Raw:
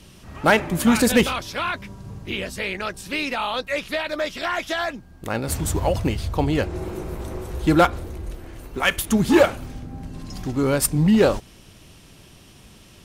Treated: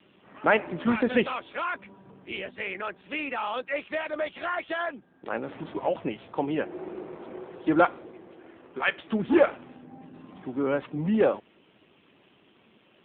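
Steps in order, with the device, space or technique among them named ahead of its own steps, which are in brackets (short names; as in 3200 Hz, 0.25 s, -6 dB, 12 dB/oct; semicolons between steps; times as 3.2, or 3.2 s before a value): HPF 110 Hz 24 dB/oct; telephone (BPF 270–3200 Hz; gain -3.5 dB; AMR-NB 7.4 kbps 8000 Hz)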